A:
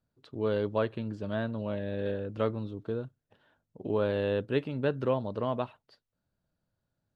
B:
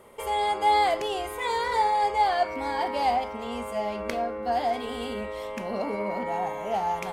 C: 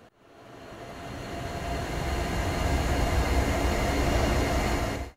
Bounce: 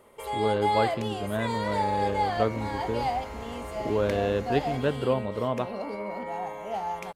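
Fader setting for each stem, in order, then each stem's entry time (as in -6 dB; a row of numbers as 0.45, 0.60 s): +2.5, -4.5, -16.0 dB; 0.00, 0.00, 0.00 s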